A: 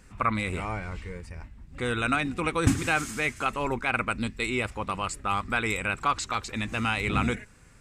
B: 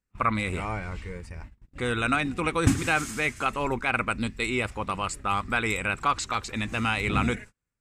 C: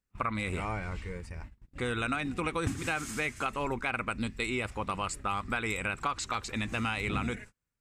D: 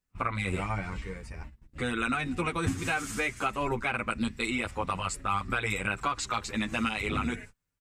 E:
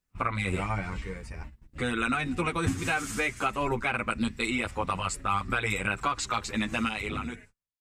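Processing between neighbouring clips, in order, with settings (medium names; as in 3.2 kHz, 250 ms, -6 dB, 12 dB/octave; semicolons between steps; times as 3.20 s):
gate -43 dBFS, range -33 dB; trim +1 dB
compression 6:1, threshold -26 dBFS, peak gain reduction 11.5 dB; trim -2 dB
endless flanger 8.8 ms +0.4 Hz; trim +5 dB
fade out at the end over 1.10 s; trim +1.5 dB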